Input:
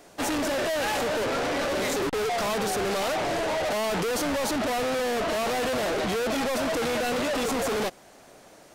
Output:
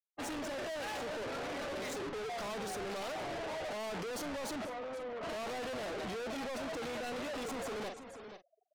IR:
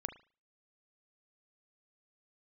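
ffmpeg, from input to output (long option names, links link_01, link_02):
-filter_complex "[0:a]asettb=1/sr,asplit=3[link_01][link_02][link_03];[link_01]atrim=end=4.654[link_04];[link_02]atrim=start=4.65:end=5.23,asetpts=PTS-STARTPTS,afade=type=in:duration=0.004:curve=qsin,afade=type=out:start_time=0.576:duration=0.004:curve=qsin,highpass=350,equalizer=frequency=390:width_type=q:width=4:gain=-7,equalizer=frequency=760:width_type=q:width=4:gain=-7,equalizer=frequency=1700:width_type=q:width=4:gain=-8,lowpass=frequency=2300:width=0.5412,lowpass=frequency=2300:width=1.3066[link_05];[link_03]atrim=start=5.226[link_06];[link_04][link_05]acrossfade=duration=0.004:curve1=hsin:curve2=qsin[link_07];[link_07][link_06]acrossfade=duration=0.004:curve1=qsin:curve2=hsin,afftfilt=real='re*gte(hypot(re,im),0.02)':imag='im*gte(hypot(re,im),0.02)':win_size=1024:overlap=0.75,asplit=2[link_08][link_09];[link_09]adelay=44,volume=-10.5dB[link_10];[link_08][link_10]amix=inputs=2:normalize=0,aecho=1:1:480:0.141,asoftclip=type=tanh:threshold=-33dB,volume=-5.5dB"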